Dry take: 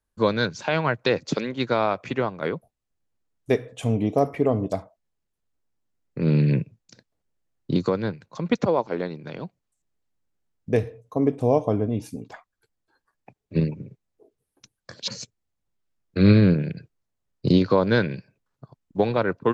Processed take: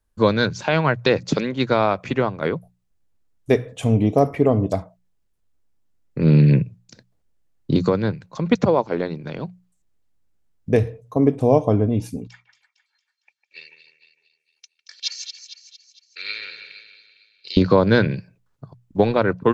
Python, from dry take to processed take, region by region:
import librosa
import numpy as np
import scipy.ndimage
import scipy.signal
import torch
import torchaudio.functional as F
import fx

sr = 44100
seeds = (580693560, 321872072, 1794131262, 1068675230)

y = fx.chain(x, sr, fx.cheby1_bandpass(low_hz=2300.0, high_hz=6100.0, order=2),
    fx.comb(ms=2.2, depth=0.58),
    fx.echo_split(split_hz=2700.0, low_ms=152, high_ms=228, feedback_pct=52, wet_db=-9.0), at=(12.27, 17.57))
y = fx.low_shelf(y, sr, hz=110.0, db=8.5)
y = fx.hum_notches(y, sr, base_hz=60, count=3)
y = y * librosa.db_to_amplitude(3.5)